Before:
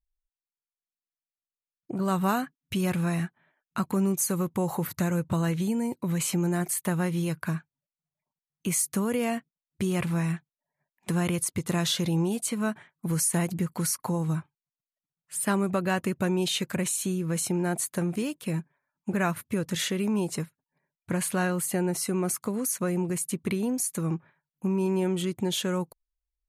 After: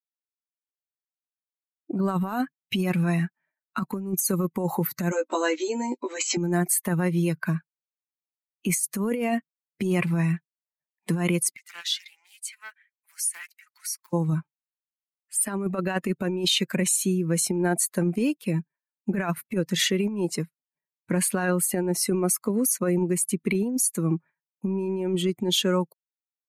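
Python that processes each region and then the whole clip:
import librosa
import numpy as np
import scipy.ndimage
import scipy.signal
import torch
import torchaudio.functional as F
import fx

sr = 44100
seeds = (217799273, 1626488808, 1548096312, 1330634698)

y = fx.chain(x, sr, fx.brickwall_bandpass(low_hz=240.0, high_hz=7900.0),
    fx.high_shelf(hz=5000.0, db=8.5),
    fx.doubler(ms=16.0, db=-3.0), at=(5.11, 6.37))
y = fx.chain(y, sr, fx.ladder_highpass(hz=1400.0, resonance_pct=30),
    fx.doppler_dist(depth_ms=0.19), at=(11.56, 14.13))
y = fx.bin_expand(y, sr, power=1.5)
y = scipy.signal.sosfilt(scipy.signal.butter(4, 170.0, 'highpass', fs=sr, output='sos'), y)
y = fx.over_compress(y, sr, threshold_db=-31.0, ratio=-0.5)
y = F.gain(torch.from_numpy(y), 8.0).numpy()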